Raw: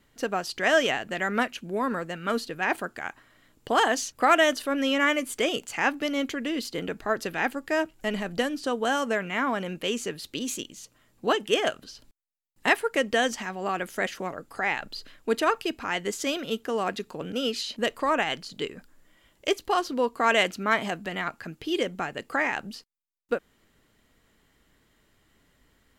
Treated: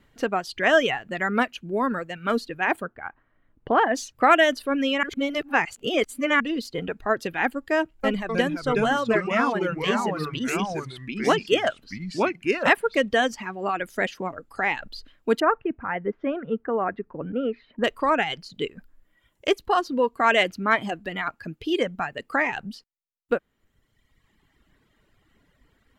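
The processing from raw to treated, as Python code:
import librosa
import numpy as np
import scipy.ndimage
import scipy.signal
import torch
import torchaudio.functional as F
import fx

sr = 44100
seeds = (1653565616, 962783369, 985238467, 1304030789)

y = fx.lowpass(x, sr, hz=1800.0, slope=12, at=(2.82, 3.95))
y = fx.echo_pitch(y, sr, ms=255, semitones=-3, count=2, db_per_echo=-3.0, at=(7.78, 13.14))
y = fx.lowpass(y, sr, hz=1800.0, slope=24, at=(15.4, 17.84))
y = fx.edit(y, sr, fx.reverse_span(start_s=5.03, length_s=1.37), tone=tone)
y = fx.dereverb_blind(y, sr, rt60_s=1.5)
y = fx.bass_treble(y, sr, bass_db=2, treble_db=-8)
y = F.gain(torch.from_numpy(y), 3.5).numpy()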